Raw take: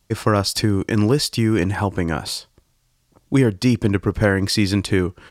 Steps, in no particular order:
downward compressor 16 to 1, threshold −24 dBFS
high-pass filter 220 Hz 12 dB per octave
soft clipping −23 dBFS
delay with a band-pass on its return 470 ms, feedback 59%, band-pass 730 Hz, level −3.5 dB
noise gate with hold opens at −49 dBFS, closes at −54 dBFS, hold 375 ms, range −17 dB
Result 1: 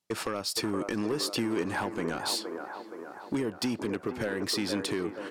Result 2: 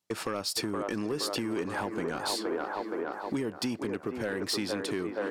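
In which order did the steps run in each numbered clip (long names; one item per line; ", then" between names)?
high-pass filter, then downward compressor, then soft clipping, then delay with a band-pass on its return, then noise gate with hold
noise gate with hold, then delay with a band-pass on its return, then downward compressor, then high-pass filter, then soft clipping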